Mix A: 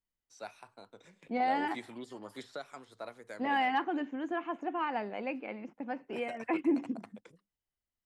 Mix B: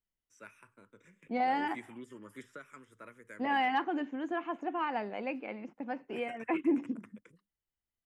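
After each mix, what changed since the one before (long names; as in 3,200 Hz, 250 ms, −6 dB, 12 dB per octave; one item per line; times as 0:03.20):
first voice: add phaser with its sweep stopped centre 1,800 Hz, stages 4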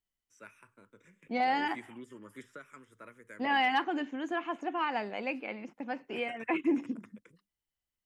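second voice: add high-shelf EQ 2,400 Hz +10.5 dB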